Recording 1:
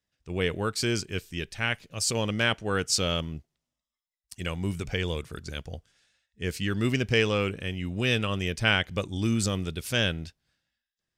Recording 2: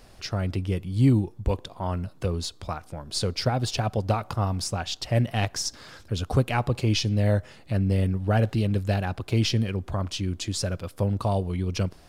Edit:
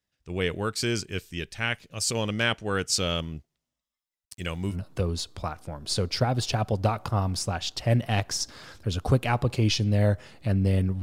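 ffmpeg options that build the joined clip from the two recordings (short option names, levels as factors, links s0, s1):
-filter_complex "[0:a]asettb=1/sr,asplit=3[s0][s1][s2];[s0]atrim=end=4.254[s3];[s1]atrim=start=4.25:end=4.77,asetpts=PTS-STARTPTS,afade=t=in:d=0.004:c=qsin,afade=t=out:st=0.516:d=0.004:c=qsin,aeval=exprs='val(0)*gte(abs(val(0)),0.00211)':c=same[s4];[s2]atrim=start=4.766[s5];[s3][s4]acrossfade=d=0.004:c1=hsin:c2=qsin[s6];[s6][s5]acrossfade=d=0.004:c1=qsin:c2=hsin,apad=whole_dur=11.02,atrim=end=11.02,atrim=end=4.77,asetpts=PTS-STARTPTS[s7];[1:a]atrim=start=1.94:end=8.27,asetpts=PTS-STARTPTS[s8];[s7][s8]acrossfade=d=0.08:c1=tri:c2=tri"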